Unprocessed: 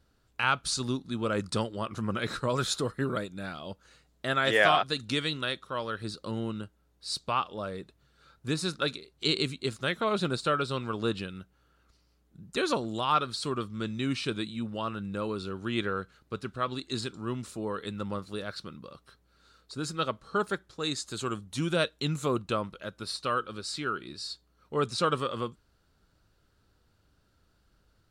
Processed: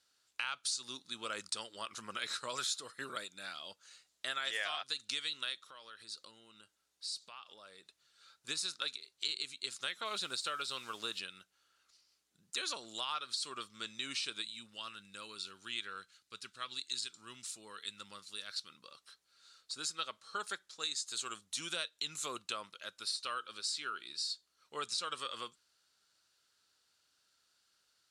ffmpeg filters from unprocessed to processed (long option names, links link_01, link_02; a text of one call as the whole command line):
ffmpeg -i in.wav -filter_complex "[0:a]asplit=3[link_01][link_02][link_03];[link_01]afade=type=out:start_time=5.61:duration=0.02[link_04];[link_02]acompressor=threshold=-42dB:ratio=5:attack=3.2:release=140:knee=1:detection=peak,afade=type=in:start_time=5.61:duration=0.02,afade=type=out:start_time=8.47:duration=0.02[link_05];[link_03]afade=type=in:start_time=8.47:duration=0.02[link_06];[link_04][link_05][link_06]amix=inputs=3:normalize=0,asettb=1/sr,asplit=3[link_07][link_08][link_09];[link_07]atrim=end=10.054[link_10];[link_08]atrim=start=10.05:end=11.19,asetpts=PTS-STARTPTS,afade=type=in:duration=0.004:curve=qsin,afade=type=out:start_time=1.136:duration=0.004:curve=qsin,acrusher=bits=8:mix=0:aa=0.5[link_11];[link_09]atrim=start=11.186[link_12];[link_10][link_11]acrossfade=duration=0.004:curve1=hsin:curve2=qsin[link_13];[link_13][link_12]acrossfade=duration=0.004:curve1=qsin:curve2=hsin,asettb=1/sr,asplit=3[link_14][link_15][link_16];[link_14]atrim=end=14.424[link_17];[link_15]atrim=start=14.42:end=18.7,asetpts=PTS-STARTPTS,afade=type=in:duration=0.004:curve=qsin,afade=type=out:start_time=4.276:duration=0.004:curve=qsin,equalizer=frequency=640:width=0.5:gain=-8.5[link_18];[link_16]atrim=start=18.696[link_19];[link_17][link_18]acrossfade=duration=0.004:curve1=hsin:curve2=qsin[link_20];[link_20][link_19]acrossfade=duration=0.004:curve1=qsin:curve2=hsin,lowpass=7400,aderivative,acompressor=threshold=-43dB:ratio=5,volume=8.5dB" out.wav